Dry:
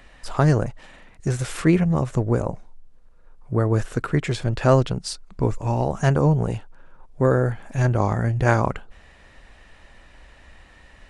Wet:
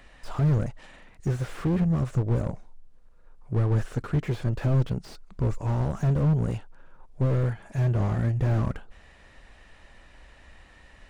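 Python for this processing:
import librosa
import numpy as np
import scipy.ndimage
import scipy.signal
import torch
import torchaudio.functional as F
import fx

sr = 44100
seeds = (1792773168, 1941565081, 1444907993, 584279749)

y = fx.notch_comb(x, sr, f0_hz=260.0, at=(7.51, 8.17))
y = fx.slew_limit(y, sr, full_power_hz=29.0)
y = y * 10.0 ** (-3.0 / 20.0)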